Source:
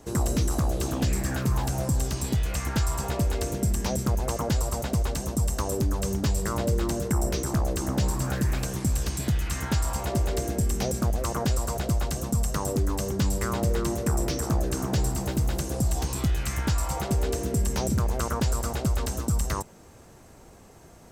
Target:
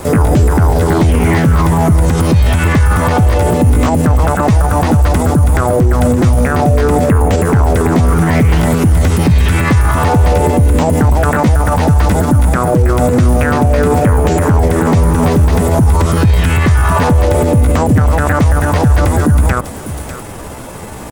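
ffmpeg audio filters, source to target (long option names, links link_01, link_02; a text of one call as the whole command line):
ffmpeg -i in.wav -filter_complex "[0:a]asetrate=55563,aresample=44100,atempo=0.793701,aecho=1:1:598:0.075,acrossover=split=2700[link_01][link_02];[link_02]acompressor=threshold=-46dB:ratio=4:attack=1:release=60[link_03];[link_01][link_03]amix=inputs=2:normalize=0,alimiter=level_in=25.5dB:limit=-1dB:release=50:level=0:latency=1,volume=-2dB" out.wav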